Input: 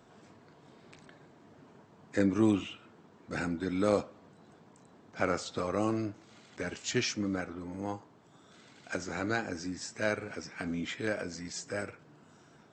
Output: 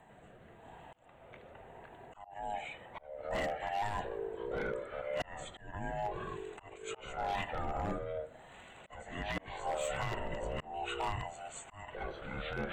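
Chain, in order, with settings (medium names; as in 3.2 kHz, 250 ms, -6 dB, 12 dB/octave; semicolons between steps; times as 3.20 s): split-band scrambler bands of 500 Hz; rotary cabinet horn 0.9 Hz; peak limiter -29 dBFS, peak gain reduction 11.5 dB; ever faster or slower copies 94 ms, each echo -5 st, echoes 2; Butterworth band-stop 5.2 kHz, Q 1; treble shelf 4.6 kHz +5.5 dB; slow attack 417 ms; wavefolder -31.5 dBFS; trim +3.5 dB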